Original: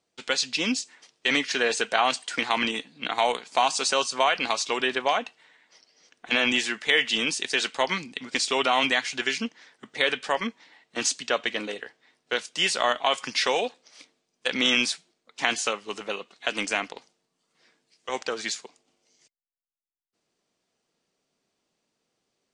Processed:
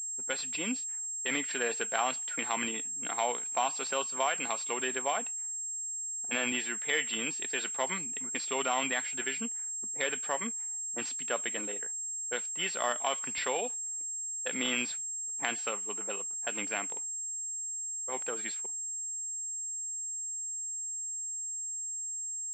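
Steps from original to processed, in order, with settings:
low-pass that shuts in the quiet parts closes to 420 Hz, open at −24.5 dBFS
switching amplifier with a slow clock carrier 7,500 Hz
level −8 dB

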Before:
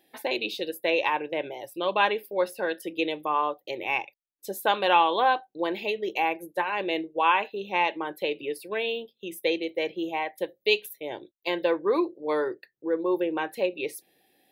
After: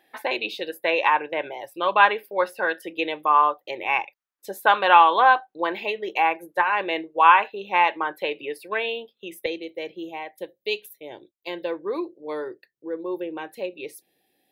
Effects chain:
parametric band 1,300 Hz +14 dB 1.9 octaves, from 0:09.46 −2 dB
level −3.5 dB

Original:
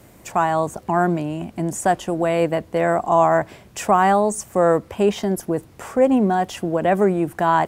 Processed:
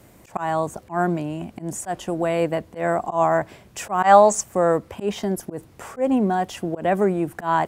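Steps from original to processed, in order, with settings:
gain on a spectral selection 0:04.03–0:04.41, 450–7,900 Hz +10 dB
volume swells 114 ms
level −2.5 dB

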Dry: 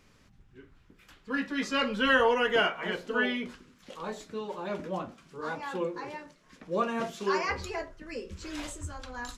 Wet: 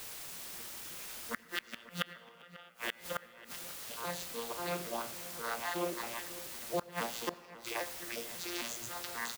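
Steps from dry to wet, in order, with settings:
vocoder with an arpeggio as carrier bare fifth, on A#2, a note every 269 ms
resonant band-pass 5,900 Hz, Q 0.8
in parallel at −11 dB: bit-depth reduction 8 bits, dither triangular
on the sum: gate with flip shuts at −34 dBFS, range −31 dB
slap from a distant wall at 93 metres, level −16 dB
on a send at −17 dB: convolution reverb RT60 2.6 s, pre-delay 78 ms
on the sum: level +13.5 dB

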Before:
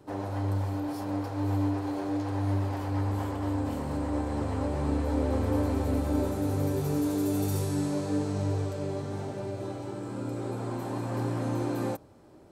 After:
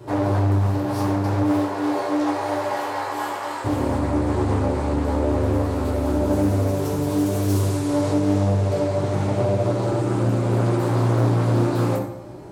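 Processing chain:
0:01.42–0:03.64: high-pass filter 260 Hz → 1,000 Hz 12 dB per octave
downward compressor, threshold −32 dBFS, peak gain reduction 9.5 dB
convolution reverb RT60 0.85 s, pre-delay 4 ms, DRR −4 dB
highs frequency-modulated by the lows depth 0.43 ms
level +9 dB

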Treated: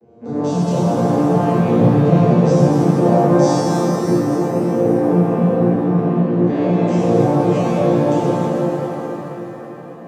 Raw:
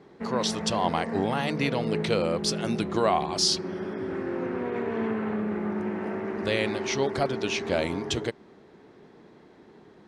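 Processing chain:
vocoder with an arpeggio as carrier major triad, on A#2, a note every 255 ms
flat-topped bell 2,200 Hz −10.5 dB 2.6 octaves
mains-hum notches 50/100/150 Hz
on a send: tape delay 555 ms, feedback 63%, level −14 dB
on the sum: reverb with rising layers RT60 3.3 s, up +7 semitones, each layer −8 dB, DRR −11.5 dB
level +3.5 dB

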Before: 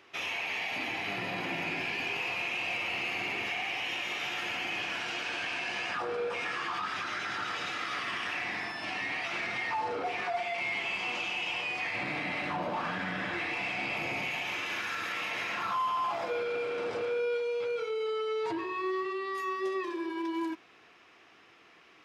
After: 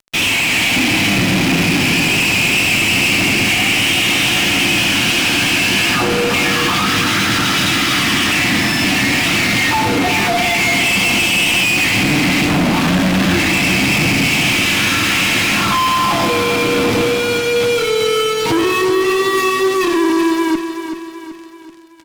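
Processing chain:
drawn EQ curve 290 Hz 0 dB, 440 Hz −18 dB, 1,600 Hz −16 dB, 3,000 Hz −8 dB
fuzz pedal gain 52 dB, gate −60 dBFS
repeating echo 381 ms, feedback 47%, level −8.5 dB

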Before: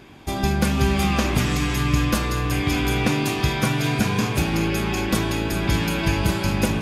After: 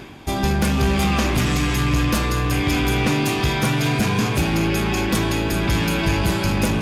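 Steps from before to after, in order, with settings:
reversed playback
upward compression, threshold −29 dBFS
reversed playback
soft clipping −16.5 dBFS, distortion −14 dB
level +4 dB

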